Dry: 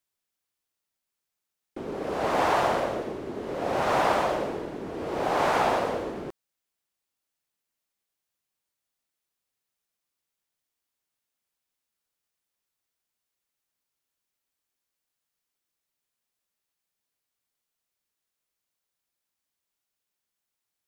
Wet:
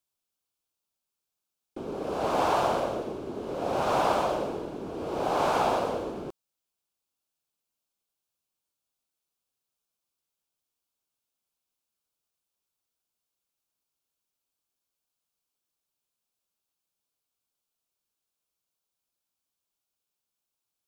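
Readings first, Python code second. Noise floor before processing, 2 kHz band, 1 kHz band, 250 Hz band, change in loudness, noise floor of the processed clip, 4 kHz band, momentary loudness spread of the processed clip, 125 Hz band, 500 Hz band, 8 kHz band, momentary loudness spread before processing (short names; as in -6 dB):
-85 dBFS, -6.0 dB, -1.5 dB, -1.0 dB, -1.5 dB, under -85 dBFS, -1.5 dB, 12 LU, -1.0 dB, -1.0 dB, -1.0 dB, 13 LU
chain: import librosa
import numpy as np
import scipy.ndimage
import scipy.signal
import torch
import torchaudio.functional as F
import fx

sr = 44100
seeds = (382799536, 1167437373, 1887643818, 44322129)

y = fx.peak_eq(x, sr, hz=1900.0, db=-12.5, octaves=0.36)
y = F.gain(torch.from_numpy(y), -1.0).numpy()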